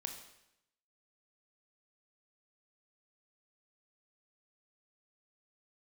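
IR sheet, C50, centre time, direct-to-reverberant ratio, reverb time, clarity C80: 7.5 dB, 23 ms, 4.0 dB, 0.85 s, 9.5 dB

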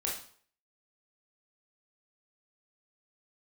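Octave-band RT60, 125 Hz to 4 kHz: 0.50, 0.50, 0.50, 0.50, 0.45, 0.45 s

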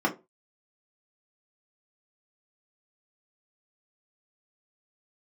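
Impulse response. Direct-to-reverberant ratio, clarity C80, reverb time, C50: -2.5 dB, 22.0 dB, 0.25 s, 15.0 dB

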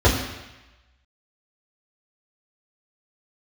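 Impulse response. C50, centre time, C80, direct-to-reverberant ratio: 5.5 dB, 40 ms, 7.0 dB, -7.5 dB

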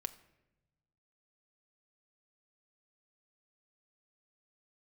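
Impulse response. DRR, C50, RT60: 10.0 dB, 16.5 dB, 1.0 s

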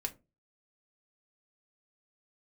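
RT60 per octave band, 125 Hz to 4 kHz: 0.45, 0.35, 0.30, 0.20, 0.20, 0.15 s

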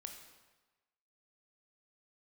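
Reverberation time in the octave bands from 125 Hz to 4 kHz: 1.1, 1.1, 1.2, 1.2, 1.1, 1.0 s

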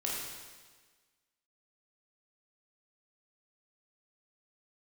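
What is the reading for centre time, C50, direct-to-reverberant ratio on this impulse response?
89 ms, -0.5 dB, -5.0 dB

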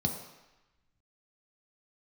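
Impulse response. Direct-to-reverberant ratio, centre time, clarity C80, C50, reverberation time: 1.5 dB, 29 ms, 8.0 dB, 6.5 dB, 1.0 s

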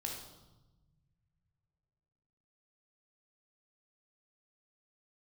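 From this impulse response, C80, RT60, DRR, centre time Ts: 6.5 dB, 1.1 s, 0.0 dB, 41 ms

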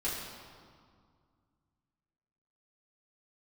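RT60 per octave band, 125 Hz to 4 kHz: 3.0, 2.6, 2.0, 2.1, 1.5, 1.4 s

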